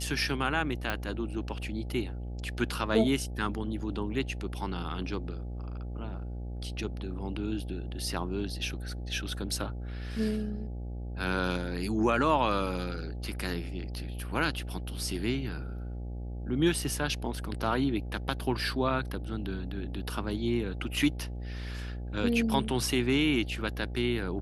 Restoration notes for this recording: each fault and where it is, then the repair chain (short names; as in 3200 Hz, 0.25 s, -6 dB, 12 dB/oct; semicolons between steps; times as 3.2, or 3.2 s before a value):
buzz 60 Hz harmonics 14 -37 dBFS
0.9 pop -16 dBFS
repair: de-click; de-hum 60 Hz, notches 14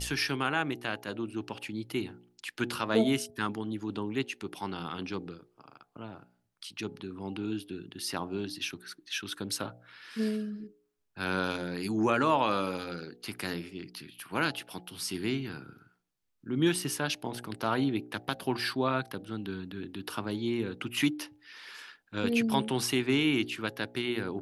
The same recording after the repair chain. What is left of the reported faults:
none